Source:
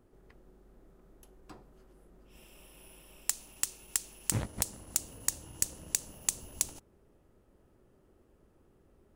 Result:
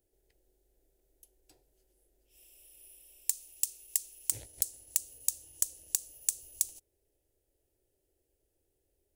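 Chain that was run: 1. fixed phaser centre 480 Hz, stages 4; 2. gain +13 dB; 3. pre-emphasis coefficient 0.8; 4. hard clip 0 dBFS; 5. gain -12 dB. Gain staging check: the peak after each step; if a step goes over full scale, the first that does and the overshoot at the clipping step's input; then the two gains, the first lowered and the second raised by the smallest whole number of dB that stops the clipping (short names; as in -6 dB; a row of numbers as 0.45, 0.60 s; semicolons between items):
-9.5, +3.5, +6.5, 0.0, -12.0 dBFS; step 2, 6.5 dB; step 2 +6 dB, step 5 -5 dB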